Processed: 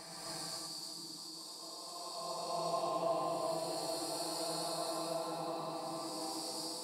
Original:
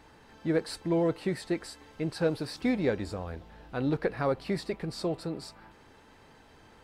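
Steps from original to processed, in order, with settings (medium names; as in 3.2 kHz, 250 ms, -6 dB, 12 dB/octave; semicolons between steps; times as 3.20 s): coarse spectral quantiser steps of 15 dB; pre-emphasis filter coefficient 0.97; Paulstretch 12×, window 0.25 s, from 4.87 s; compressor with a negative ratio -53 dBFS, ratio -1; high-order bell 870 Hz +14.5 dB 1 oct; repeats whose band climbs or falls 684 ms, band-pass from 270 Hz, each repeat 0.7 oct, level -0.5 dB; gated-style reverb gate 320 ms rising, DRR -6 dB; trim +1 dB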